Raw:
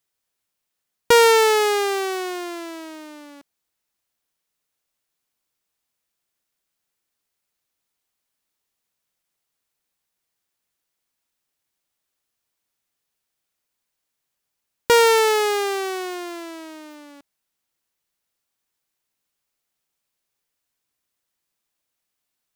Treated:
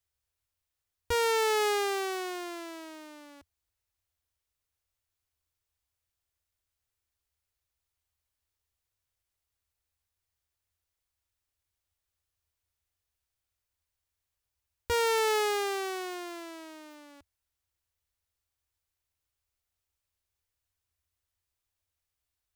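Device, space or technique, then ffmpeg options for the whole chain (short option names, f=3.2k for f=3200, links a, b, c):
car stereo with a boomy subwoofer: -af "lowshelf=f=120:t=q:w=3:g=13.5,alimiter=limit=-13.5dB:level=0:latency=1,volume=-7dB"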